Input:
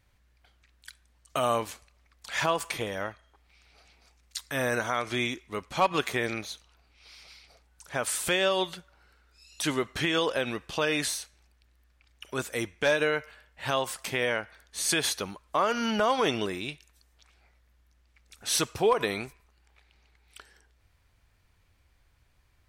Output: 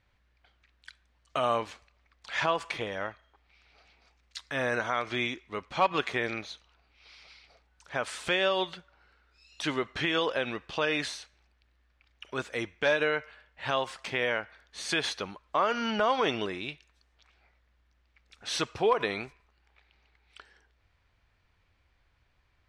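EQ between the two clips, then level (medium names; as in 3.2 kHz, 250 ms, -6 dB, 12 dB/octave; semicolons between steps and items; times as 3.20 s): low-pass 4.1 kHz 12 dB/octave; bass shelf 370 Hz -4.5 dB; 0.0 dB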